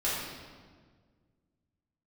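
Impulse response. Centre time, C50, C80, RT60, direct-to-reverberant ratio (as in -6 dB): 92 ms, -1.0 dB, 1.5 dB, 1.6 s, -10.0 dB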